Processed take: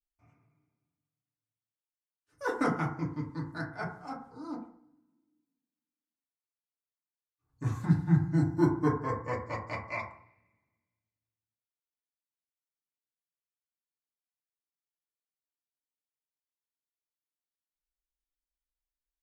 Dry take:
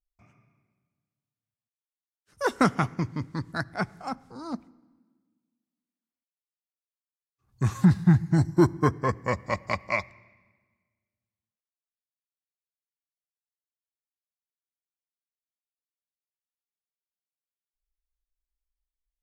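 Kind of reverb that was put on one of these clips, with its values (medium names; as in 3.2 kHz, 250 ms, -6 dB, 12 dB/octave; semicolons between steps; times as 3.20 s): FDN reverb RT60 0.55 s, low-frequency decay 0.9×, high-frequency decay 0.3×, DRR -5.5 dB; trim -13.5 dB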